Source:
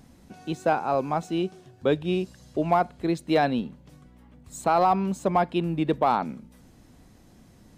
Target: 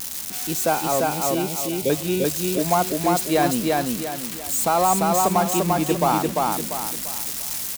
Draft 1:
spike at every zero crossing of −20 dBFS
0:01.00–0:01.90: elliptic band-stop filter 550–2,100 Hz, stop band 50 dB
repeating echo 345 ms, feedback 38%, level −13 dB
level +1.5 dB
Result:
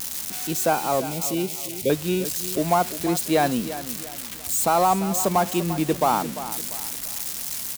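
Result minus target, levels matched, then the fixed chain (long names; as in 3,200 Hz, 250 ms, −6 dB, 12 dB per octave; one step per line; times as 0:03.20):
echo-to-direct −11 dB
spike at every zero crossing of −20 dBFS
0:01.00–0:01.90: elliptic band-stop filter 550–2,100 Hz, stop band 50 dB
repeating echo 345 ms, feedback 38%, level −2 dB
level +1.5 dB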